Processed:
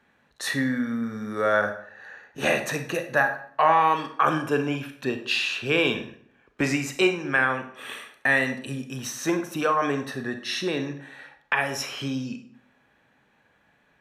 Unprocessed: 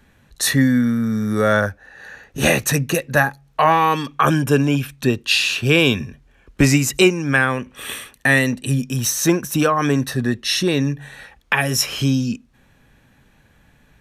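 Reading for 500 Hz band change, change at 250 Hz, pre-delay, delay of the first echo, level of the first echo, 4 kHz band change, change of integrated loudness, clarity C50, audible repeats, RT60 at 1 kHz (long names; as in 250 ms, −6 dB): −5.5 dB, −9.5 dB, 30 ms, no echo audible, no echo audible, −9.0 dB, −7.0 dB, 9.5 dB, no echo audible, 0.55 s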